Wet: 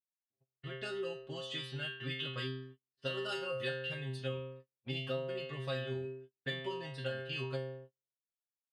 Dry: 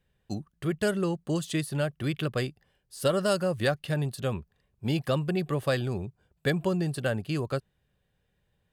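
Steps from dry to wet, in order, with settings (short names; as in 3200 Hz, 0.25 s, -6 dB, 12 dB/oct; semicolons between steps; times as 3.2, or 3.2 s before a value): LPF 11000 Hz 12 dB/oct; bell 3000 Hz +11 dB 1.7 oct; metallic resonator 130 Hz, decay 0.79 s, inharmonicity 0.002; AGC gain up to 11 dB; tone controls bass -3 dB, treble -7 dB; notch 2300 Hz, Q 11; doubler 13 ms -10 dB; gate -46 dBFS, range -39 dB; compressor 5:1, threshold -29 dBFS, peak gain reduction 8.5 dB; low-pass opened by the level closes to 2300 Hz, open at -29 dBFS; gain -5 dB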